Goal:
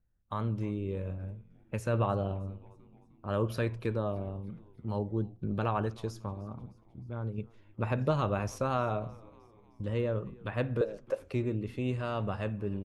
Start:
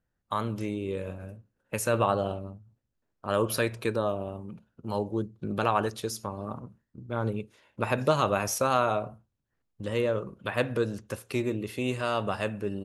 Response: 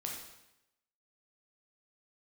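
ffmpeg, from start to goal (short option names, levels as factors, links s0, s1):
-filter_complex "[0:a]aemphasis=mode=reproduction:type=bsi,asettb=1/sr,asplit=3[s0][s1][s2];[s0]atrim=end=6.334[s3];[s1]atrim=start=6.33:end=7.38,asetpts=PTS-STARTPTS,afade=t=in:d=0.004:c=qsin,afade=t=out:st=1.046:d=0.004:c=qsin,acompressor=threshold=0.0141:ratio=1.5[s4];[s2]atrim=start=7.376[s5];[s3][s4]acrossfade=d=0.004:c1=hsin:c2=qsin[s6];[s6][s5]acrossfade=d=0.004:c1=qsin:c2=hsin,asettb=1/sr,asplit=3[s7][s8][s9];[s7]atrim=end=10.814[s10];[s8]atrim=start=10.81:end=11.34,asetpts=PTS-STARTPTS,afade=t=in:d=0.004:c=qsin,afade=t=out:st=0.526:d=0.004:c=qsin,highpass=f=550:t=q:w=4.9[s11];[s9]atrim=start=11.336[s12];[s10][s11]acrossfade=d=0.004:c1=hsin:c2=qsin[s13];[s13][s12]acrossfade=d=0.004:c1=qsin:c2=hsin,asplit=5[s14][s15][s16][s17][s18];[s15]adelay=308,afreqshift=-110,volume=0.0708[s19];[s16]adelay=616,afreqshift=-220,volume=0.0398[s20];[s17]adelay=924,afreqshift=-330,volume=0.0221[s21];[s18]adelay=1232,afreqshift=-440,volume=0.0124[s22];[s14][s19][s20][s21][s22]amix=inputs=5:normalize=0,volume=0.447"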